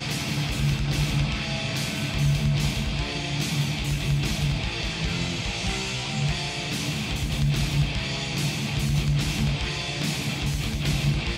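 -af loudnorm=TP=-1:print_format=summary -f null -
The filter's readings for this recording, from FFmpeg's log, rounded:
Input Integrated:    -25.9 LUFS
Input True Peak:     -12.2 dBTP
Input LRA:             0.9 LU
Input Threshold:     -35.9 LUFS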